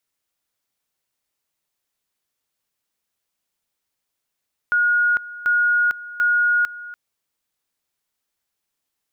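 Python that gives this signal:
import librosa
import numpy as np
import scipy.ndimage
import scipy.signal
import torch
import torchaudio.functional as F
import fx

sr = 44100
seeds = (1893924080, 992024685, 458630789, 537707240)

y = fx.two_level_tone(sr, hz=1440.0, level_db=-14.5, drop_db=17.5, high_s=0.45, low_s=0.29, rounds=3)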